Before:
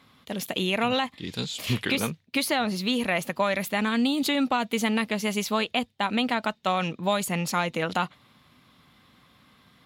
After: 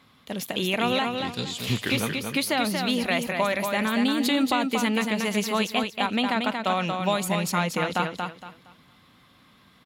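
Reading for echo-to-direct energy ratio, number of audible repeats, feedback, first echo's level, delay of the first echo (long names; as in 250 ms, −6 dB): −4.5 dB, 3, 27%, −5.0 dB, 232 ms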